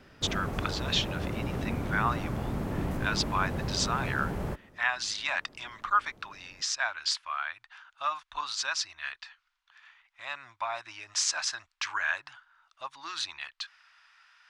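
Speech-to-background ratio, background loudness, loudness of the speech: 2.5 dB, -34.5 LUFS, -32.0 LUFS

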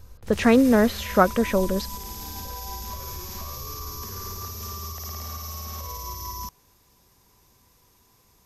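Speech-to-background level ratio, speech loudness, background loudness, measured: 14.0 dB, -21.0 LUFS, -35.0 LUFS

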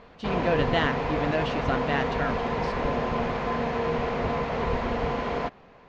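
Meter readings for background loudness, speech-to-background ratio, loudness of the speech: -28.0 LUFS, -2.0 dB, -30.0 LUFS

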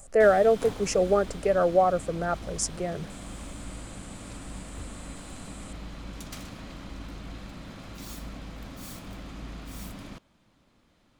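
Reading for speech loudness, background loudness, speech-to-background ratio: -24.5 LUFS, -42.0 LUFS, 17.5 dB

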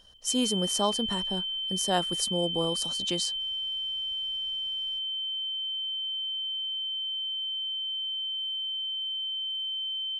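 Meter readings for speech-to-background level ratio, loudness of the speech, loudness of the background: -0.5 dB, -30.5 LUFS, -30.0 LUFS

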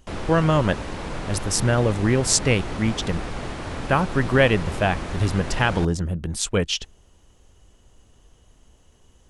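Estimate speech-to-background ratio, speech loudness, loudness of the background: 9.5 dB, -22.5 LUFS, -32.0 LUFS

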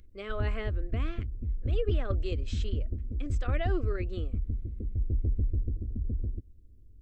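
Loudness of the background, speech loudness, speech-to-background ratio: -34.0 LUFS, -39.0 LUFS, -5.0 dB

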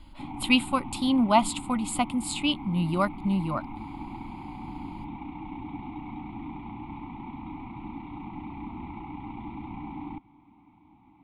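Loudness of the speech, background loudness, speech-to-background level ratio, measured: -26.5 LUFS, -39.5 LUFS, 13.0 dB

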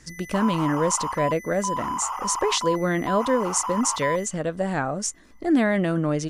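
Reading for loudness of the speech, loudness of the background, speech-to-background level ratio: -24.5 LUFS, -30.0 LUFS, 5.5 dB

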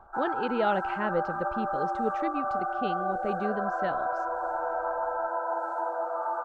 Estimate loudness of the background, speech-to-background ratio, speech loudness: -31.0 LUFS, -2.0 dB, -33.0 LUFS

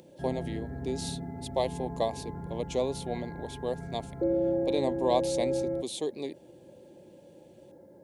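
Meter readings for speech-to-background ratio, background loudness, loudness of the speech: 0.5 dB, -34.5 LUFS, -34.0 LUFS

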